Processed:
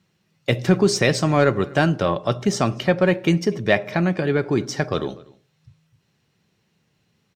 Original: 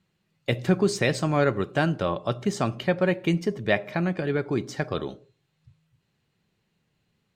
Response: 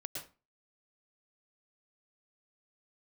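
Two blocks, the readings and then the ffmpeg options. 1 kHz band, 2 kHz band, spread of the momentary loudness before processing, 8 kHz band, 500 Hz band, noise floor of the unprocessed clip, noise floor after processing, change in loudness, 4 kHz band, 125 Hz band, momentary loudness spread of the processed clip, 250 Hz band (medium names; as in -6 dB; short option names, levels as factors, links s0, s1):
+5.0 dB, +5.0 dB, 7 LU, +8.0 dB, +5.0 dB, -74 dBFS, -68 dBFS, +5.5 dB, +6.5 dB, +5.0 dB, 7 LU, +5.0 dB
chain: -filter_complex "[0:a]highpass=62,equalizer=f=5600:w=6.4:g=8.5,asplit=2[s0][s1];[s1]asoftclip=type=tanh:threshold=0.106,volume=0.316[s2];[s0][s2]amix=inputs=2:normalize=0,asplit=2[s3][s4];[s4]adelay=244.9,volume=0.0708,highshelf=f=4000:g=-5.51[s5];[s3][s5]amix=inputs=2:normalize=0,volume=1.5"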